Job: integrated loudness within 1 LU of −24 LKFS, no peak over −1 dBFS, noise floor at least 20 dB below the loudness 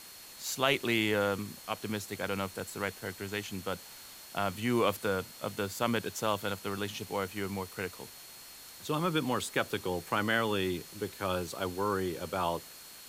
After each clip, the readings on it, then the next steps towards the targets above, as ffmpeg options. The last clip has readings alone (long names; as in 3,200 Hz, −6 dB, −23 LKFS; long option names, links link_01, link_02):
interfering tone 4,300 Hz; level of the tone −55 dBFS; background noise floor −50 dBFS; target noise floor −53 dBFS; integrated loudness −33.0 LKFS; sample peak −12.0 dBFS; target loudness −24.0 LKFS
→ -af "bandreject=frequency=4300:width=30"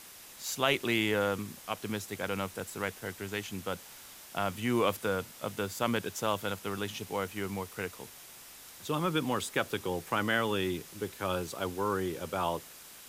interfering tone none found; background noise floor −51 dBFS; target noise floor −53 dBFS
→ -af "afftdn=noise_reduction=6:noise_floor=-51"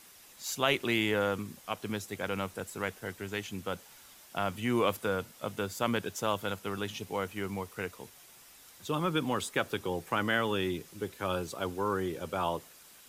background noise floor −56 dBFS; integrated loudness −33.5 LKFS; sample peak −12.0 dBFS; target loudness −24.0 LKFS
→ -af "volume=9.5dB"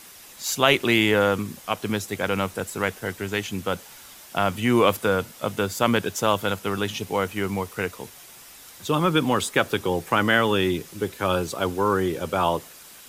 integrated loudness −24.0 LKFS; sample peak −2.5 dBFS; background noise floor −46 dBFS